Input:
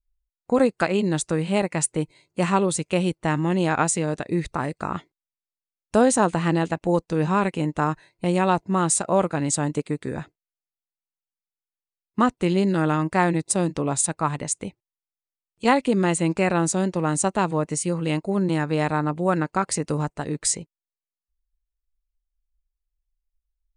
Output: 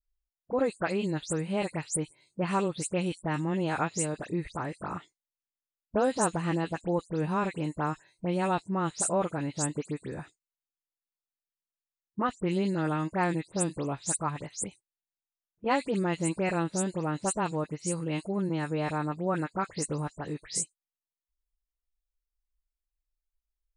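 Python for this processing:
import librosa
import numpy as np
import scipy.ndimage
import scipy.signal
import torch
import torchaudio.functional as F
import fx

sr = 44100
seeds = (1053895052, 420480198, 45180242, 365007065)

y = fx.spec_delay(x, sr, highs='late', ms=106)
y = y * librosa.db_to_amplitude(-7.5)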